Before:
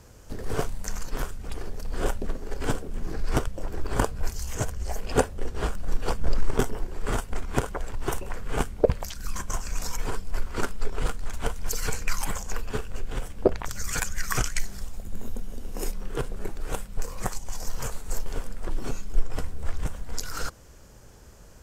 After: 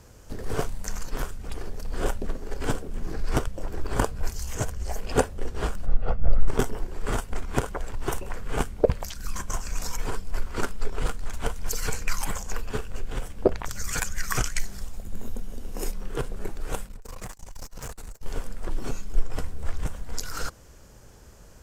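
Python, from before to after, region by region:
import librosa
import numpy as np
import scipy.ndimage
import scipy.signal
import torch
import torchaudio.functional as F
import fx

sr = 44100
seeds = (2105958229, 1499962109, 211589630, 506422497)

y = fx.chain(x, sr, fx.spacing_loss(db_at_10k=40),
    fx.comb(ms=1.5, depth=0.59), at=(5.86, 6.48))
y = fx.chain(y, sr, fx.notch(hz=3200.0, q=16.0),
    fx.over_compress(threshold_db=-28.0, ratio=-1.0),
    fx.tube_stage(drive_db=32.0, bias=0.8), at=(16.87, 18.23))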